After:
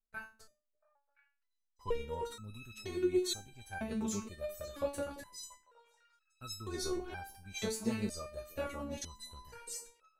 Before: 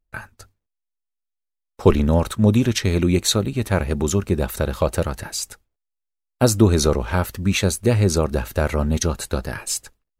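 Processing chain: repeats whose band climbs or falls 341 ms, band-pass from 300 Hz, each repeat 1.4 oct, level -8 dB; resonator arpeggio 2.1 Hz 220–1300 Hz; trim -1.5 dB

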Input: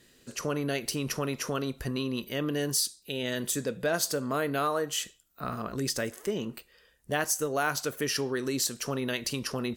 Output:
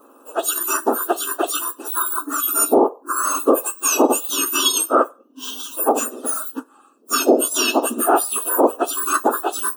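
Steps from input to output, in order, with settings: spectrum inverted on a logarithmic axis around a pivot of 2 kHz; Butterworth band-stop 2.2 kHz, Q 1.8; treble shelf 5.8 kHz +5.5 dB; small resonant body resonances 1.2/2.6 kHz, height 13 dB, ringing for 25 ms; loudness maximiser +17 dB; upward expansion 1.5:1, over -22 dBFS; trim -2 dB

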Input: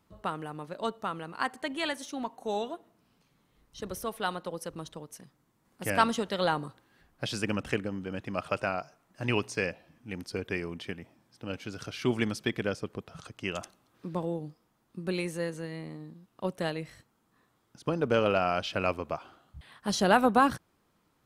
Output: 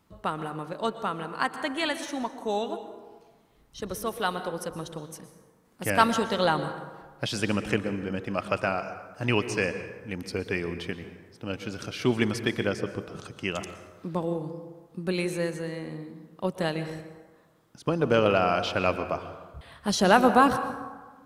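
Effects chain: plate-style reverb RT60 1.4 s, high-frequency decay 0.5×, pre-delay 105 ms, DRR 10 dB; trim +3.5 dB

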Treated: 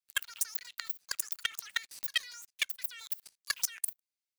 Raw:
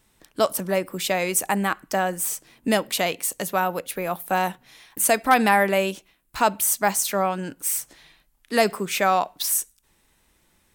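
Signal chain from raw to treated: Bessel high-pass 1.1 kHz, order 6; compression 12:1, threshold -31 dBFS, peak gain reduction 16 dB; waveshaping leveller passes 3; level held to a coarse grid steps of 23 dB; wide varispeed 2.45×; trim -1.5 dB

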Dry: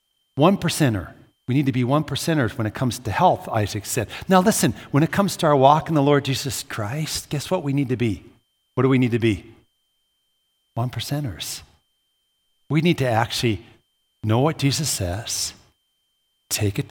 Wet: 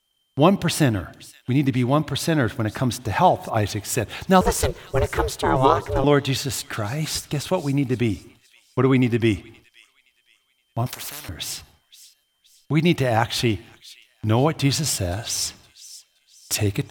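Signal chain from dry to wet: 4.41–6.04 s: ring modulator 260 Hz; feedback echo behind a high-pass 520 ms, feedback 39%, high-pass 2.9 kHz, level -16.5 dB; 10.86–11.29 s: spectrum-flattening compressor 10:1

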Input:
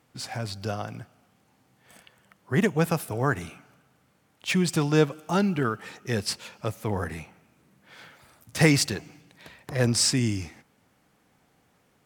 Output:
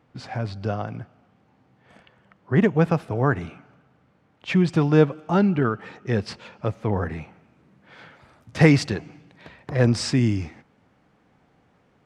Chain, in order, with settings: tape spacing loss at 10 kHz 27 dB, from 7.21 s at 10 kHz 21 dB; trim +5.5 dB

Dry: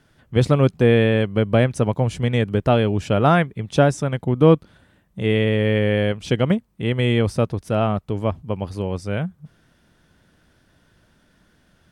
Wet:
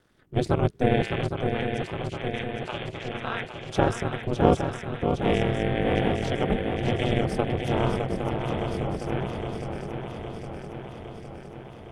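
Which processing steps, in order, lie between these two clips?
ring modulator 110 Hz; 1.02–3.68 s: band-pass filter 2.6 kHz, Q 1.1; ring modulator 130 Hz; shuffle delay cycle 811 ms, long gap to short 3:1, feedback 64%, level -6 dB; trim -1 dB

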